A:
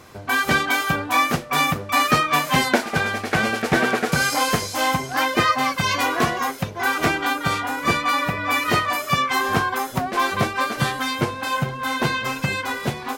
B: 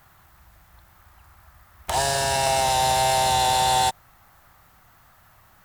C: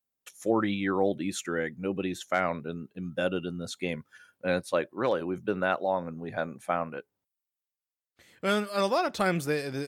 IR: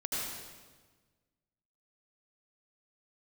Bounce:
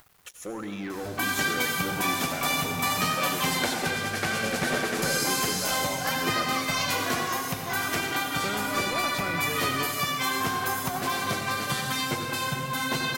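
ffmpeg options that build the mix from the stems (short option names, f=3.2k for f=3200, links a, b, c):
-filter_complex "[0:a]highshelf=f=3.4k:g=11,acompressor=threshold=-29dB:ratio=2,adelay=900,volume=-6.5dB,asplit=2[a][b];[b]volume=-3.5dB[c];[1:a]volume=-14dB[d];[2:a]acompressor=threshold=-32dB:ratio=6,asoftclip=type=tanh:threshold=-34dB,volume=2.5dB,asplit=3[e][f][g];[f]volume=-11dB[h];[g]apad=whole_len=248748[i];[d][i]sidechaincompress=threshold=-41dB:ratio=8:attack=16:release=390[j];[3:a]atrim=start_sample=2205[k];[c][h]amix=inputs=2:normalize=0[l];[l][k]afir=irnorm=-1:irlink=0[m];[a][j][e][m]amix=inputs=4:normalize=0,acompressor=mode=upward:threshold=-44dB:ratio=2.5,aeval=exprs='val(0)*gte(abs(val(0)),0.00282)':c=same"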